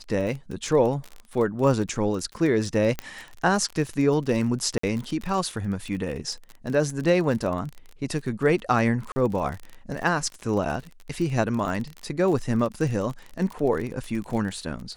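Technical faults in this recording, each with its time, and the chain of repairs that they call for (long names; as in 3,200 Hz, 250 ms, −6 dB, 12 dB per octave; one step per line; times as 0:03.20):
surface crackle 33 per second −30 dBFS
0:02.99: click −13 dBFS
0:04.78–0:04.83: drop-out 54 ms
0:09.12–0:09.16: drop-out 40 ms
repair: click removal
repair the gap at 0:04.78, 54 ms
repair the gap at 0:09.12, 40 ms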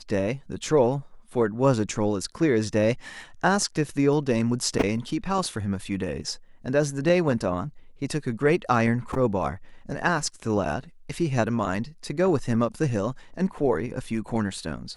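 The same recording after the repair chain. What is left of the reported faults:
none of them is left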